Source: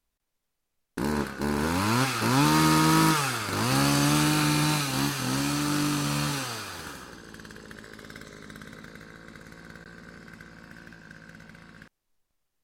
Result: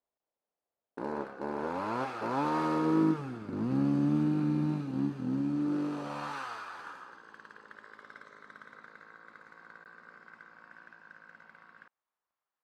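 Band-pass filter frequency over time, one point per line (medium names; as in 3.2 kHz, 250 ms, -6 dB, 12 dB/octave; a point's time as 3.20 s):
band-pass filter, Q 1.7
2.65 s 630 Hz
3.24 s 240 Hz
5.50 s 240 Hz
6.39 s 1.1 kHz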